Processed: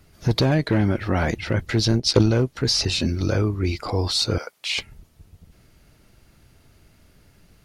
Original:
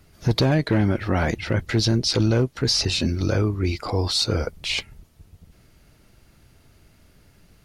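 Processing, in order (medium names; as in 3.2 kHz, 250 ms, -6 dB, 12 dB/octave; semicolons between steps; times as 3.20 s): 1.88–2.29 s: transient shaper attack +11 dB, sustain -10 dB; 4.38–4.78 s: high-pass 820 Hz 12 dB/octave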